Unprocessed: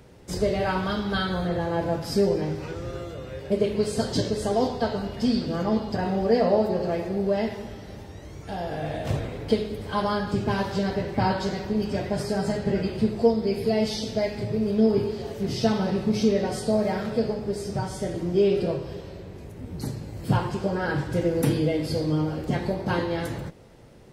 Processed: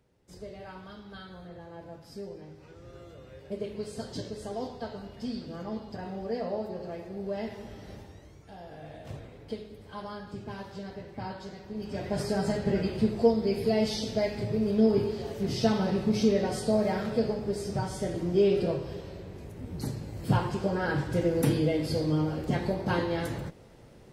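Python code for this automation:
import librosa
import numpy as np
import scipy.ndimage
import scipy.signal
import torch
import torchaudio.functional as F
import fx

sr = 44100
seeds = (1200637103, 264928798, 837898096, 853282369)

y = fx.gain(x, sr, db=fx.line((2.55, -19.0), (3.11, -12.0), (7.08, -12.0), (7.92, -4.0), (8.5, -14.5), (11.64, -14.5), (12.19, -2.5)))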